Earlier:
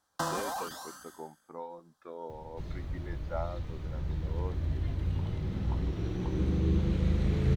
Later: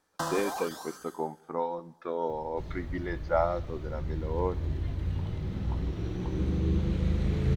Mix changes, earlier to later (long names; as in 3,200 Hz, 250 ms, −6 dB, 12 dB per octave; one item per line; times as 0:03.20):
speech +10.5 dB
reverb: on, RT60 1.2 s